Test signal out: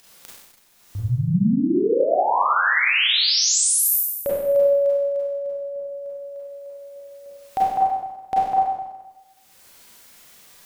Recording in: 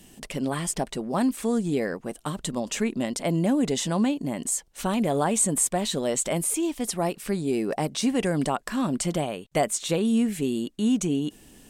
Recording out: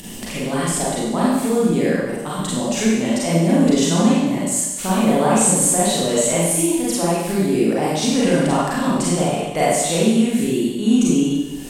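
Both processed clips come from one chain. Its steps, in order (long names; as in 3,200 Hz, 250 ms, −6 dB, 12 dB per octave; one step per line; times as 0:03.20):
upward compression, threshold −30 dBFS
four-comb reverb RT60 1.1 s, combs from 32 ms, DRR −7.5 dB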